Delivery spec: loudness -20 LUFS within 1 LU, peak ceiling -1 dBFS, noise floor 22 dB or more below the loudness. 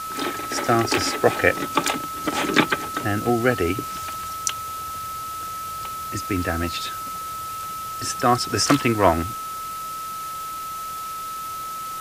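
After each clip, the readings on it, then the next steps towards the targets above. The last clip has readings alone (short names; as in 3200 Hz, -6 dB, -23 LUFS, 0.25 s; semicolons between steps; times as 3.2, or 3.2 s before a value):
steady tone 1300 Hz; tone level -29 dBFS; noise floor -31 dBFS; noise floor target -46 dBFS; loudness -24.0 LUFS; peak -1.5 dBFS; loudness target -20.0 LUFS
-> notch 1300 Hz, Q 30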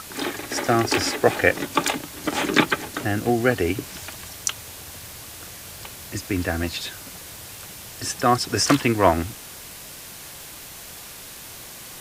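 steady tone none; noise floor -40 dBFS; noise floor target -45 dBFS
-> denoiser 6 dB, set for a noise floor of -40 dBFS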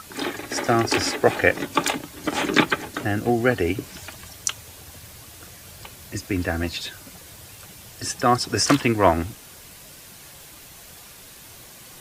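noise floor -45 dBFS; loudness -23.0 LUFS; peak -2.0 dBFS; loudness target -20.0 LUFS
-> gain +3 dB; limiter -1 dBFS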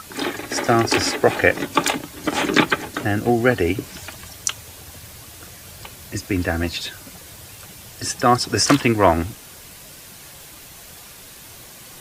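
loudness -20.0 LUFS; peak -1.0 dBFS; noise floor -42 dBFS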